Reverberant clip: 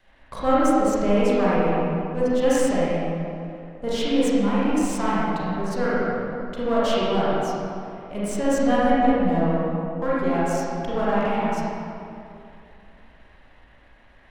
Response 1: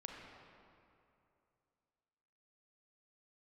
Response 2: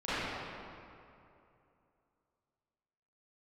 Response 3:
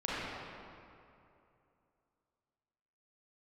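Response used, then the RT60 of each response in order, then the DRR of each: 3; 2.7 s, 2.7 s, 2.7 s; 0.0 dB, -17.0 dB, -9.0 dB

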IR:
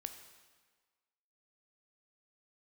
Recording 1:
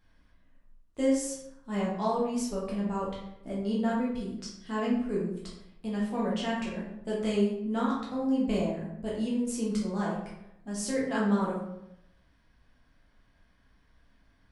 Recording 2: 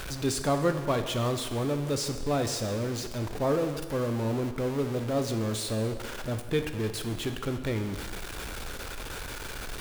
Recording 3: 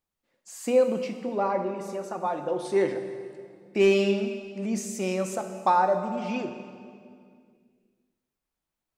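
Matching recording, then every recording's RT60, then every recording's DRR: 2; 0.80 s, 1.5 s, 2.3 s; -6.0 dB, 7.0 dB, 6.5 dB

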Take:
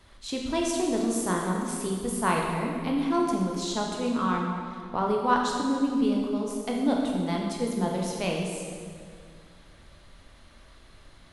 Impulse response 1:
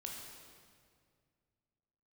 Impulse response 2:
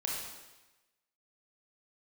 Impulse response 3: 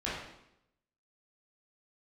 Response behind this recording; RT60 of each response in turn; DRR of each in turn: 1; 2.1 s, 1.1 s, 0.80 s; -1.0 dB, -3.5 dB, -9.0 dB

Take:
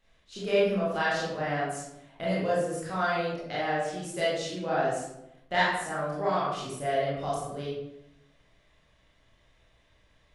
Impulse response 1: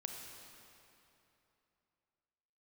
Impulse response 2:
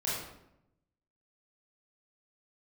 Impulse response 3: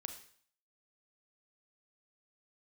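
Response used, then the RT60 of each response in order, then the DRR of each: 2; 3.0 s, 0.80 s, 0.55 s; 2.0 dB, -8.0 dB, 6.0 dB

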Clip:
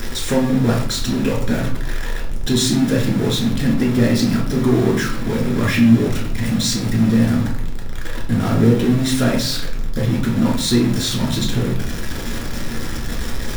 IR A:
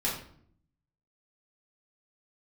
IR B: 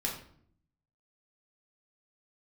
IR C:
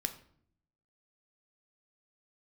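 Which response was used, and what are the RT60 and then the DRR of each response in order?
B; 0.60 s, 0.60 s, 0.60 s; -7.5 dB, -3.0 dB, 7.0 dB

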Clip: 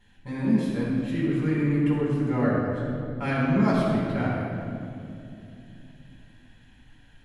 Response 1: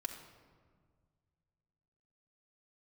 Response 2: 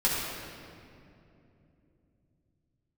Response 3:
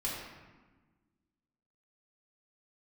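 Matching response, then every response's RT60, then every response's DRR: 2; 1.8 s, 2.8 s, 1.3 s; 1.5 dB, -8.0 dB, -6.5 dB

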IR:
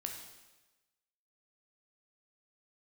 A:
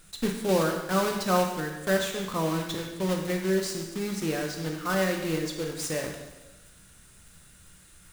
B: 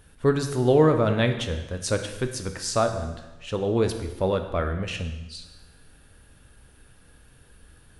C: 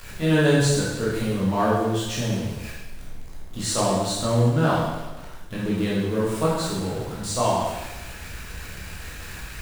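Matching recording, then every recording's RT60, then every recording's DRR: A; 1.1 s, 1.1 s, 1.1 s; 2.0 dB, 6.5 dB, -7.0 dB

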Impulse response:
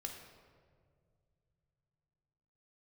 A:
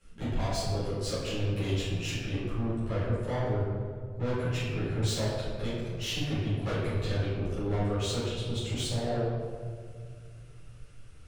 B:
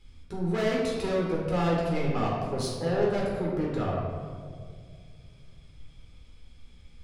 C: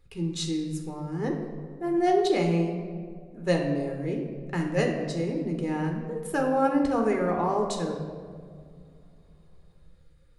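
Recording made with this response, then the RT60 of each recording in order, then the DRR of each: C; 2.0 s, 2.0 s, 2.1 s; -11.5 dB, -4.5 dB, 2.0 dB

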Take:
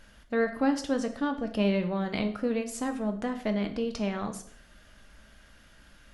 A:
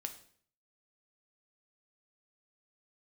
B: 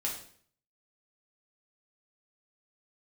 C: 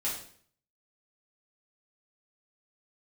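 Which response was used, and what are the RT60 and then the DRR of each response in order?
A; 0.55 s, 0.55 s, 0.55 s; 5.5 dB, -3.0 dB, -7.5 dB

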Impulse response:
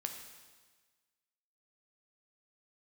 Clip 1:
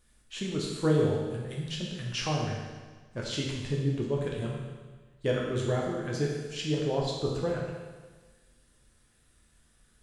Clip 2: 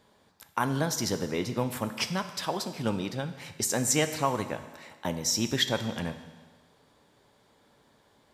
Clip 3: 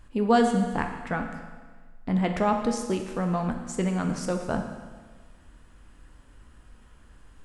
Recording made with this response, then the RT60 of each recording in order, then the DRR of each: 3; 1.4 s, 1.4 s, 1.4 s; -3.5 dB, 9.0 dB, 3.5 dB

